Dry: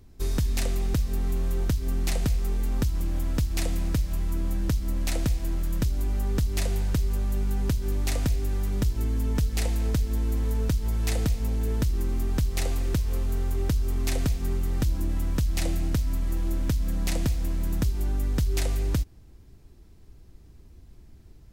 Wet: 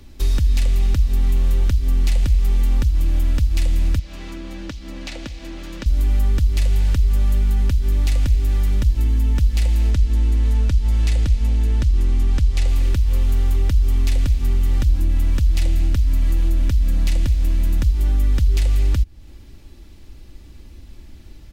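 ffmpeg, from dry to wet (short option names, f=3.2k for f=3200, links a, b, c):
-filter_complex "[0:a]asettb=1/sr,asplit=3[a][b][c];[a]atrim=end=3.994[d];[b]atrim=start=3.99:end=5.86,asetpts=PTS-STARTPTS,afade=t=in:d=0.004:c=qsin,afade=t=out:st=1.866:d=0.004:c=qsin,acrossover=split=190 6600:gain=0.126 1 0.141[e][f][g];[e][f][g]amix=inputs=3:normalize=0[h];[c]atrim=start=5.856[i];[d][h]acrossfade=d=0.004:c1=hsin:c2=qsin[j];[j][i]acrossfade=d=0.004:c1=qsin:c2=hsin,asettb=1/sr,asplit=3[k][l][m];[k]atrim=end=9.914[n];[l]atrim=start=9.91:end=12.68,asetpts=PTS-STARTPTS,afade=t=in:d=0.004:c=qsin,afade=t=out:st=2.766:d=0.004:c=qsin,lowpass=10k[o];[m]atrim=start=12.676[p];[n][o]acrossfade=d=0.004:c1=hsin:c2=qsin[q];[q][p]acrossfade=d=0.004:c1=qsin:c2=hsin,equalizer=f=3k:w=0.86:g=7.5,aecho=1:1:3.5:0.39,acrossover=split=130[r][s];[s]acompressor=threshold=-43dB:ratio=3[t];[r][t]amix=inputs=2:normalize=0,volume=8dB"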